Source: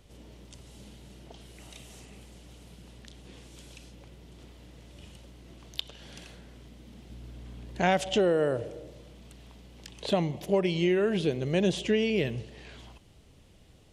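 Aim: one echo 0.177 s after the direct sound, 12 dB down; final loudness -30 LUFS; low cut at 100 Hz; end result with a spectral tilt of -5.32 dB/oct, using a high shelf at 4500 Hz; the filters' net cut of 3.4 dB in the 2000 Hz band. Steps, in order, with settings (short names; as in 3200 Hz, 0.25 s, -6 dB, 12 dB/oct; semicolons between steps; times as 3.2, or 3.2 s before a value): HPF 100 Hz; bell 2000 Hz -3 dB; high shelf 4500 Hz -6.5 dB; echo 0.177 s -12 dB; gain -1.5 dB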